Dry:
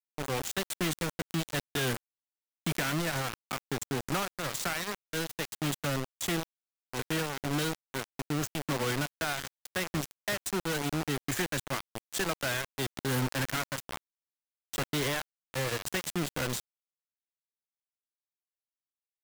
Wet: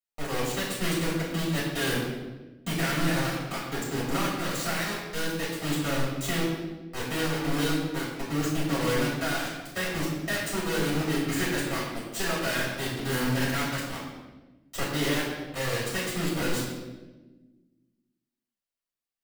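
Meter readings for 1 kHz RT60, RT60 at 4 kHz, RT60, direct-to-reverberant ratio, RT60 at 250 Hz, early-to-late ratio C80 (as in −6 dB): 1.0 s, 0.90 s, 1.2 s, −9.5 dB, 2.0 s, 3.5 dB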